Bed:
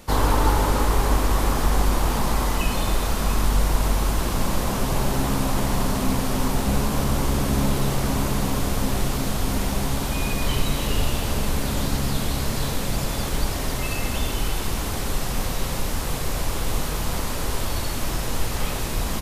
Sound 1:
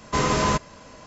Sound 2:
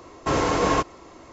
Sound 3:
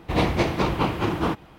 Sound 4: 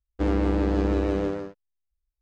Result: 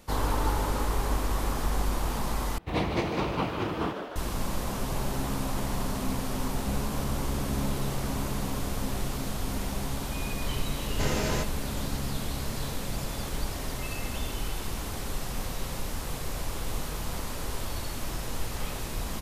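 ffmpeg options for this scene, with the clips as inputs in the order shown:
ffmpeg -i bed.wav -i cue0.wav -i cue1.wav -i cue2.wav -filter_complex "[0:a]volume=-8dB[link_01];[3:a]asplit=9[link_02][link_03][link_04][link_05][link_06][link_07][link_08][link_09][link_10];[link_03]adelay=151,afreqshift=120,volume=-8dB[link_11];[link_04]adelay=302,afreqshift=240,volume=-12dB[link_12];[link_05]adelay=453,afreqshift=360,volume=-16dB[link_13];[link_06]adelay=604,afreqshift=480,volume=-20dB[link_14];[link_07]adelay=755,afreqshift=600,volume=-24.1dB[link_15];[link_08]adelay=906,afreqshift=720,volume=-28.1dB[link_16];[link_09]adelay=1057,afreqshift=840,volume=-32.1dB[link_17];[link_10]adelay=1208,afreqshift=960,volume=-36.1dB[link_18];[link_02][link_11][link_12][link_13][link_14][link_15][link_16][link_17][link_18]amix=inputs=9:normalize=0[link_19];[1:a]asuperstop=centerf=1100:order=4:qfactor=3.6[link_20];[link_01]asplit=2[link_21][link_22];[link_21]atrim=end=2.584[link_23];[link_19]atrim=end=1.58,asetpts=PTS-STARTPTS,volume=-7dB[link_24];[link_22]atrim=start=4.156[link_25];[link_20]atrim=end=1.06,asetpts=PTS-STARTPTS,volume=-7dB,afade=type=in:duration=0.004:curve=hsin,afade=type=out:start_time=1.056:duration=0.004:curve=hsin,adelay=10860[link_26];[link_23][link_24]acrossfade=duration=0.004:curve1=hsin:curve2=hsin[link_27];[link_27][link_25]acrossfade=duration=0.004:curve1=hsin:curve2=hsin[link_28];[link_28][link_26]amix=inputs=2:normalize=0" out.wav

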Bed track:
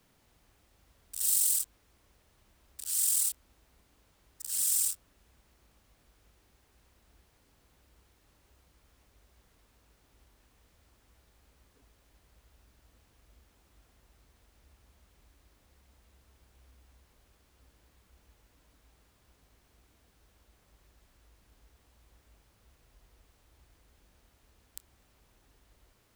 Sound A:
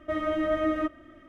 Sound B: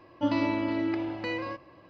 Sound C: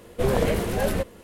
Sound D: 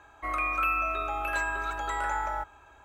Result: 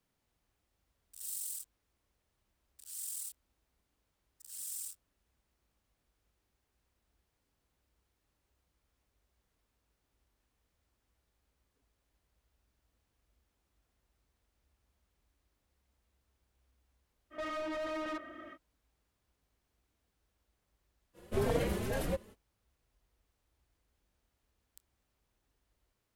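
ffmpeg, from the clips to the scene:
ffmpeg -i bed.wav -i cue0.wav -i cue1.wav -i cue2.wav -filter_complex "[0:a]volume=-14dB[link_01];[1:a]asplit=2[link_02][link_03];[link_03]highpass=frequency=720:poles=1,volume=30dB,asoftclip=type=tanh:threshold=-16dB[link_04];[link_02][link_04]amix=inputs=2:normalize=0,lowpass=frequency=2400:poles=1,volume=-6dB[link_05];[3:a]asplit=2[link_06][link_07];[link_07]adelay=3.8,afreqshift=2.2[link_08];[link_06][link_08]amix=inputs=2:normalize=1[link_09];[link_05]atrim=end=1.28,asetpts=PTS-STARTPTS,volume=-16dB,afade=type=in:duration=0.05,afade=type=out:start_time=1.23:duration=0.05,adelay=17300[link_10];[link_09]atrim=end=1.23,asetpts=PTS-STARTPTS,volume=-6.5dB,afade=type=in:duration=0.05,afade=type=out:start_time=1.18:duration=0.05,adelay=21130[link_11];[link_01][link_10][link_11]amix=inputs=3:normalize=0" out.wav

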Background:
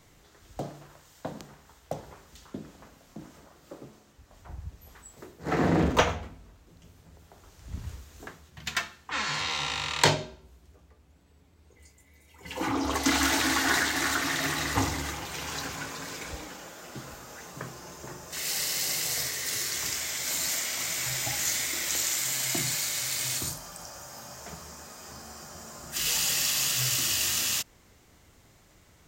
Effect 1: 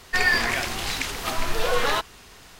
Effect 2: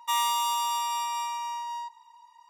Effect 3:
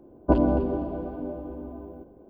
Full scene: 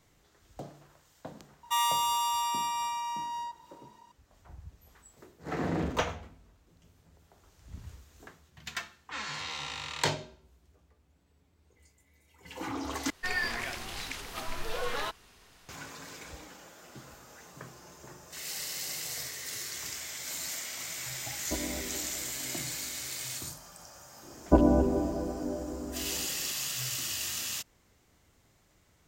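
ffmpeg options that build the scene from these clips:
ffmpeg -i bed.wav -i cue0.wav -i cue1.wav -i cue2.wav -filter_complex "[3:a]asplit=2[link_01][link_02];[0:a]volume=-7.5dB,asplit=2[link_03][link_04];[link_03]atrim=end=13.104[link_05];[1:a]atrim=end=2.59,asetpts=PTS-STARTPTS,volume=-11dB[link_06];[link_04]atrim=start=15.686[link_07];[2:a]atrim=end=2.49,asetpts=PTS-STARTPTS,volume=-1.5dB,afade=type=in:duration=0.004:curve=hsin,afade=type=out:start_time=2.486:duration=0.004:curve=hsin,adelay=1630[link_08];[link_01]atrim=end=2.29,asetpts=PTS-STARTPTS,volume=-16dB,afade=type=in:duration=0.004:curve=hsin,afade=type=out:start_time=2.286:duration=0.004:curve=hsin,adelay=21220[link_09];[link_02]atrim=end=2.29,asetpts=PTS-STARTPTS,volume=-1dB,afade=type=in:duration=0.004:curve=hsin,afade=type=out:start_time=2.286:duration=0.004:curve=hsin,adelay=24230[link_10];[link_05][link_06]acrossfade=duration=0.004:curve1=hsin:curve2=hsin[link_11];[link_11][link_07]acrossfade=duration=0.004:curve1=hsin:curve2=hsin[link_12];[link_12][link_08][link_09][link_10]amix=inputs=4:normalize=0" out.wav

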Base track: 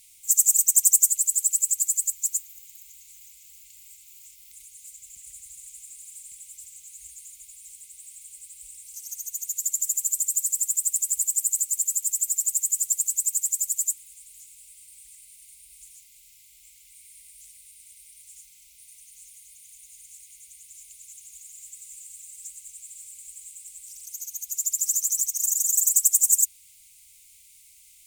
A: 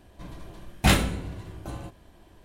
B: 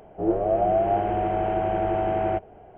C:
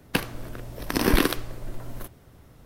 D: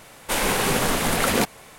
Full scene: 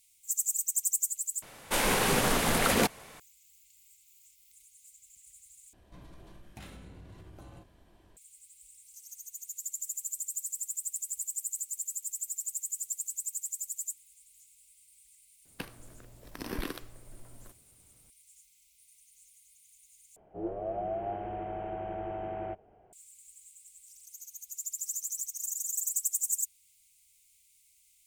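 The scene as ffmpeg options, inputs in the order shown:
ffmpeg -i bed.wav -i cue0.wav -i cue1.wav -i cue2.wav -i cue3.wav -filter_complex "[0:a]volume=-11.5dB[link_01];[1:a]acompressor=threshold=-38dB:ratio=6:attack=3.2:release=140:knee=1:detection=peak[link_02];[link_01]asplit=4[link_03][link_04][link_05][link_06];[link_03]atrim=end=1.424[link_07];[4:a]atrim=end=1.78,asetpts=PTS-STARTPTS,volume=-4.5dB[link_08];[link_04]atrim=start=3.196:end=5.734[link_09];[link_02]atrim=end=2.44,asetpts=PTS-STARTPTS,volume=-7.5dB[link_10];[link_05]atrim=start=8.166:end=20.164[link_11];[2:a]atrim=end=2.77,asetpts=PTS-STARTPTS,volume=-13dB[link_12];[link_06]atrim=start=22.926[link_13];[3:a]atrim=end=2.65,asetpts=PTS-STARTPTS,volume=-16dB,afade=type=in:duration=0.004:curve=hsin,afade=type=out:start_time=2.646:duration=0.004:curve=hsin,adelay=15450[link_14];[link_07][link_08]acrossfade=duration=0.004:curve1=hsin:curve2=hsin[link_15];[link_15][link_09]acrossfade=duration=0.004:curve1=hsin:curve2=hsin[link_16];[link_16][link_10]acrossfade=duration=0.004:curve1=hsin:curve2=hsin[link_17];[link_17][link_11]acrossfade=duration=0.004:curve1=hsin:curve2=hsin[link_18];[link_18][link_12]acrossfade=duration=0.004:curve1=hsin:curve2=hsin[link_19];[link_19][link_13]acrossfade=duration=0.004:curve1=hsin:curve2=hsin[link_20];[link_20][link_14]amix=inputs=2:normalize=0" out.wav

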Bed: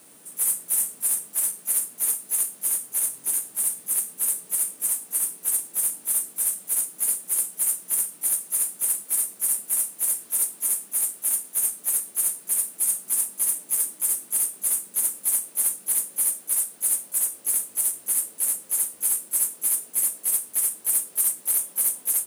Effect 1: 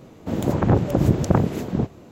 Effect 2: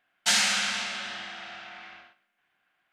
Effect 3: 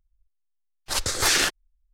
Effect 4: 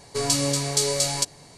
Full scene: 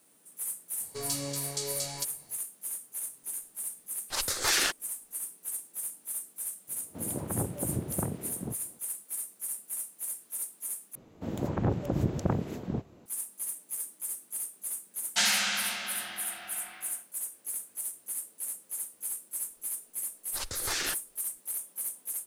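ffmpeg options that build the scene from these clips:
ffmpeg -i bed.wav -i cue0.wav -i cue1.wav -i cue2.wav -i cue3.wav -filter_complex "[3:a]asplit=2[link_01][link_02];[1:a]asplit=2[link_03][link_04];[0:a]volume=-12.5dB[link_05];[link_01]lowshelf=frequency=200:gain=-8.5[link_06];[link_03]highpass=64[link_07];[link_05]asplit=2[link_08][link_09];[link_08]atrim=end=10.954[link_10];[link_04]atrim=end=2.11,asetpts=PTS-STARTPTS,volume=-10.5dB[link_11];[link_09]atrim=start=13.056[link_12];[4:a]atrim=end=1.57,asetpts=PTS-STARTPTS,volume=-12dB,afade=type=in:duration=0.004:curve=hsin,afade=type=out:start_time=1.566:duration=0.004:curve=hsin,adelay=800[link_13];[link_06]atrim=end=1.93,asetpts=PTS-STARTPTS,volume=-5.5dB,afade=type=in:duration=0.004:curve=hsin,afade=type=out:start_time=1.926:duration=0.004:curve=hsin,adelay=3220[link_14];[link_07]atrim=end=2.11,asetpts=PTS-STARTPTS,volume=-15dB,afade=type=in:duration=0.004:curve=hsin,afade=type=out:start_time=2.106:duration=0.004:curve=hsin,adelay=6680[link_15];[2:a]atrim=end=2.92,asetpts=PTS-STARTPTS,volume=-3dB,afade=type=in:duration=0.004:curve=hsin,afade=type=out:start_time=2.916:duration=0.004:curve=hsin,adelay=14900[link_16];[link_02]atrim=end=1.93,asetpts=PTS-STARTPTS,volume=-11.5dB,afade=type=in:duration=0.004:curve=hsin,afade=type=out:start_time=1.926:duration=0.004:curve=hsin,adelay=19450[link_17];[link_10][link_11]acrossfade=duration=0.004:curve1=hsin:curve2=hsin[link_18];[link_18][link_12]acrossfade=duration=0.004:curve1=hsin:curve2=hsin[link_19];[link_19][link_13][link_14][link_15][link_16][link_17]amix=inputs=6:normalize=0" out.wav

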